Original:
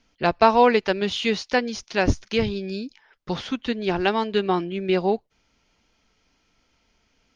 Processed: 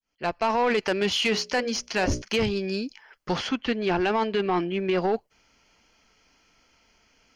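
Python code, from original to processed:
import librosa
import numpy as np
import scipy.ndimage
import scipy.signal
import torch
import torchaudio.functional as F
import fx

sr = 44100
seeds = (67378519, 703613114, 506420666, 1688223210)

p1 = fx.fade_in_head(x, sr, length_s=0.77)
p2 = fx.hum_notches(p1, sr, base_hz=60, count=10, at=(1.23, 2.22))
p3 = fx.low_shelf(p2, sr, hz=360.0, db=-7.0)
p4 = fx.notch(p3, sr, hz=3700.0, q=5.7)
p5 = fx.over_compress(p4, sr, threshold_db=-25.0, ratio=-0.5)
p6 = p4 + (p5 * librosa.db_to_amplitude(1.5))
p7 = 10.0 ** (-13.5 / 20.0) * np.tanh(p6 / 10.0 ** (-13.5 / 20.0))
p8 = fx.air_absorb(p7, sr, metres=94.0, at=(3.49, 5.02))
y = p8 * librosa.db_to_amplitude(-2.5)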